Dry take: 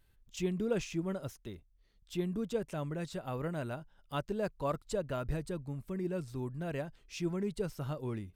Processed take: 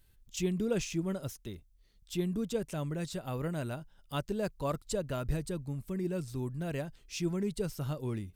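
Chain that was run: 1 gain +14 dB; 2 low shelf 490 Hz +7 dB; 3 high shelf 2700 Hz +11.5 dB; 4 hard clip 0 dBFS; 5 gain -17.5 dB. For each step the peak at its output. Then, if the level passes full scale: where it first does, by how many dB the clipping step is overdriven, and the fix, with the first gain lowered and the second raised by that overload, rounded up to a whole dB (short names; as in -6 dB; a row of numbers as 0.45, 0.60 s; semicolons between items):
-6.0, -2.5, -2.0, -2.0, -19.5 dBFS; no overload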